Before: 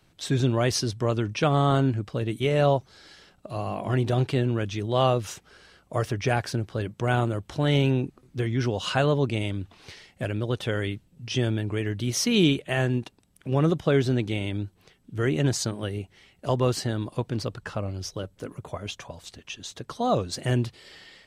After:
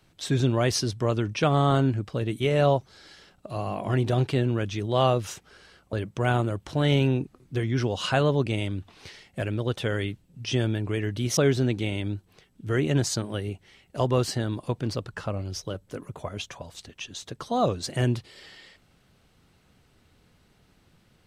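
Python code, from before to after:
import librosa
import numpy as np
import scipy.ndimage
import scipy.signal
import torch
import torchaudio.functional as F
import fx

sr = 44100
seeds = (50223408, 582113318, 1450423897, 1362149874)

y = fx.edit(x, sr, fx.cut(start_s=5.93, length_s=0.83),
    fx.cut(start_s=12.2, length_s=1.66), tone=tone)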